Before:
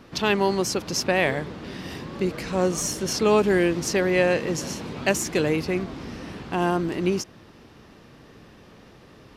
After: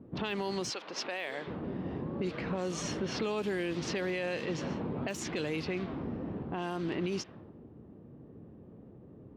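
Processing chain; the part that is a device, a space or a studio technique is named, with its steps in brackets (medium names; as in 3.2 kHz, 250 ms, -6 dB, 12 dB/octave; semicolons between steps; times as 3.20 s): level-controlled noise filter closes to 350 Hz, open at -17.5 dBFS; broadcast voice chain (high-pass 73 Hz; de-esser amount 60%; compression 4:1, threshold -30 dBFS, peak gain reduction 13.5 dB; peaking EQ 3.4 kHz +6 dB 1.1 oct; peak limiter -24 dBFS, peak gain reduction 9.5 dB); 0.69–1.46 s: high-pass 650 Hz -> 310 Hz 12 dB/octave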